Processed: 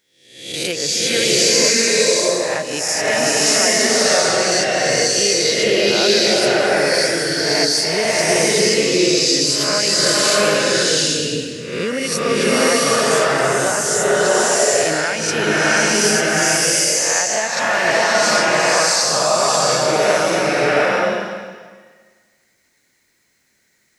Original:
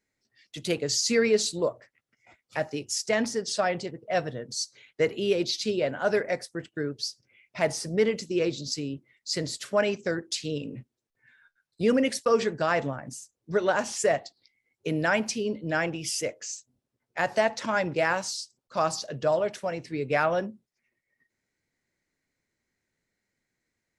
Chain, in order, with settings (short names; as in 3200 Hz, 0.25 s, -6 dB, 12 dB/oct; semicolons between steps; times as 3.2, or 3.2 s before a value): spectral swells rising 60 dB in 0.67 s; tilt +2 dB/oct; compressor, threshold -26 dBFS, peak gain reduction 10 dB; bloom reverb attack 0.76 s, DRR -7 dB; gain +7.5 dB